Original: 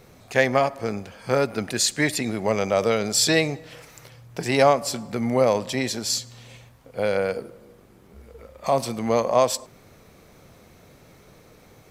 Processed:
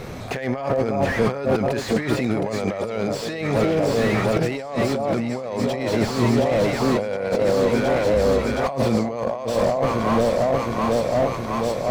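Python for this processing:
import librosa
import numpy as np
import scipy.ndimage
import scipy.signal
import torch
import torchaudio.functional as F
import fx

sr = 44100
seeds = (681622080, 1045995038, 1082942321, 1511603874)

p1 = np.clip(x, -10.0 ** (-20.0 / 20.0), 10.0 ** (-20.0 / 20.0))
p2 = x + (p1 * 10.0 ** (-8.0 / 20.0))
p3 = fx.lowpass(p2, sr, hz=3600.0, slope=6)
p4 = fx.echo_alternate(p3, sr, ms=359, hz=960.0, feedback_pct=82, wet_db=-8.5)
p5 = fx.over_compress(p4, sr, threshold_db=-30.0, ratio=-1.0)
p6 = fx.slew_limit(p5, sr, full_power_hz=38.0)
y = p6 * 10.0 ** (8.5 / 20.0)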